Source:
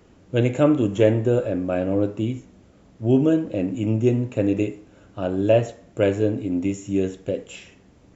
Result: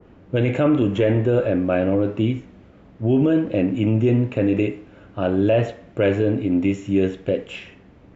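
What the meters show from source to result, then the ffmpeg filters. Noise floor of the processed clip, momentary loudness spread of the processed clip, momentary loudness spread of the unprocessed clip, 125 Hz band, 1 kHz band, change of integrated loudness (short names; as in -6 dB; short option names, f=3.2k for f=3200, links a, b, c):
-49 dBFS, 8 LU, 11 LU, +2.5 dB, +2.0 dB, +2.0 dB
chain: -af "lowpass=2.5k,alimiter=limit=-14.5dB:level=0:latency=1:release=12,adynamicequalizer=threshold=0.00794:dfrequency=1500:dqfactor=0.7:tfrequency=1500:tqfactor=0.7:attack=5:release=100:ratio=0.375:range=3.5:mode=boostabove:tftype=highshelf,volume=4.5dB"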